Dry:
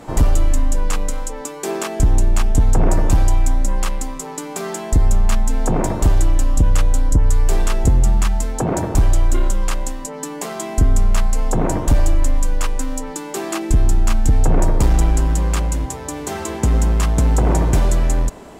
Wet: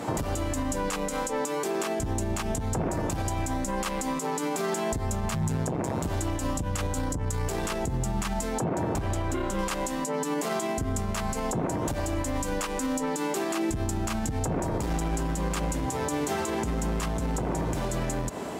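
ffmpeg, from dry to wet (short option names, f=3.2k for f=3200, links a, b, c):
-filter_complex "[0:a]asettb=1/sr,asplit=3[a][b][c];[a]atrim=end=5.344[d];[b]atrim=start=5.34:end=6.06,asetpts=PTS-STARTPTS,afade=t=in:d=0.004:c=qsin,afade=t=out:st=0.716:d=0.004:c=qsin,tremolo=f=130:d=0.857[e];[c]atrim=start=6.056[f];[d][e]acrossfade=d=0.004:c1=hsin:c2=qsin[g];[g][f]acrossfade=d=0.004:c1=qsin:c2=hsin,asettb=1/sr,asplit=3[h][i][j];[h]atrim=end=6.974[k];[i]atrim=start=6.97:end=7.86,asetpts=PTS-STARTPTS,afade=t=in:d=0.004:c=qsin,afade=t=out:st=0.886:d=0.004:c=qsin,acontrast=39[l];[j]atrim=start=7.856[m];[k][l]acrossfade=d=0.004:c1=hsin:c2=qsin[n];[n][m]acrossfade=d=0.004:c1=qsin:c2=hsin,asettb=1/sr,asplit=3[o][p][q];[o]atrim=end=8.644[r];[p]atrim=start=8.64:end=9.59,asetpts=PTS-STARTPTS,afade=t=in:d=0.004:c=qsin,afade=t=out:st=0.946:d=0.004:c=qsin,bass=f=250:g=0,treble=f=4k:g=-7[s];[q]atrim=start=9.586[t];[r][s]acrossfade=d=0.004:c1=hsin:c2=qsin[u];[u][t]acrossfade=d=0.004:c1=qsin:c2=hsin,highpass=100,acompressor=threshold=-26dB:ratio=4,alimiter=level_in=0.5dB:limit=-24dB:level=0:latency=1:release=68,volume=-0.5dB,volume=4.5dB"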